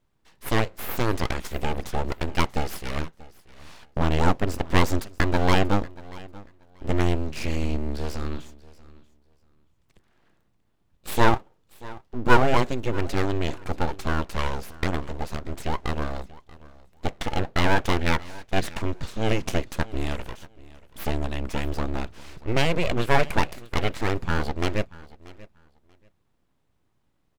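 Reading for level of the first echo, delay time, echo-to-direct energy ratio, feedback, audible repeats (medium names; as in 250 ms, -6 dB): -20.5 dB, 635 ms, -20.5 dB, 19%, 2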